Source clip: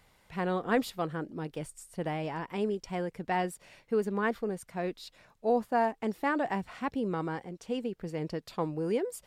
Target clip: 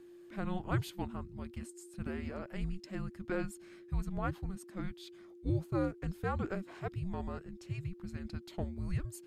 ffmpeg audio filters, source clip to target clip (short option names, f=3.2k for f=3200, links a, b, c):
-af "aeval=exprs='val(0)+0.00501*sin(2*PI*730*n/s)':c=same,afreqshift=-380,volume=-5.5dB"